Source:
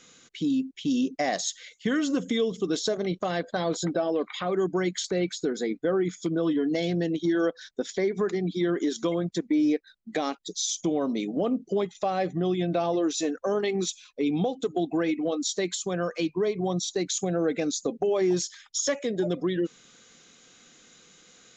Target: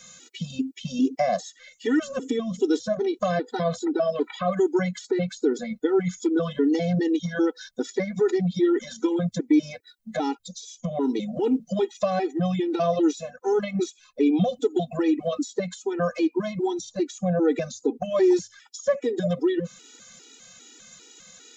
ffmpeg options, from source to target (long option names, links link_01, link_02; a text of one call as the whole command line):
ffmpeg -i in.wav -filter_complex "[0:a]highshelf=frequency=6300:gain=10,bandreject=frequency=50:width_type=h:width=6,bandreject=frequency=100:width_type=h:width=6,acrossover=split=1600[link_01][link_02];[link_02]acompressor=threshold=-42dB:ratio=12[link_03];[link_01][link_03]amix=inputs=2:normalize=0,afftfilt=real='re*gt(sin(2*PI*2.5*pts/sr)*(1-2*mod(floor(b*sr/1024/250),2)),0)':imag='im*gt(sin(2*PI*2.5*pts/sr)*(1-2*mod(floor(b*sr/1024/250),2)),0)':win_size=1024:overlap=0.75,volume=6dB" out.wav